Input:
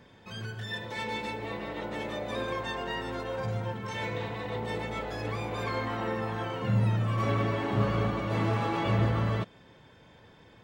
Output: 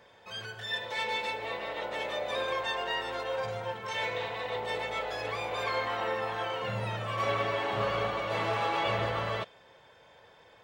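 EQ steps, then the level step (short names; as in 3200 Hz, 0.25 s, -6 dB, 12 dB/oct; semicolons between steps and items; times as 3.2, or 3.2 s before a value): resonant low shelf 380 Hz -10.5 dB, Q 1.5; dynamic EQ 3200 Hz, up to +5 dB, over -48 dBFS, Q 0.93; 0.0 dB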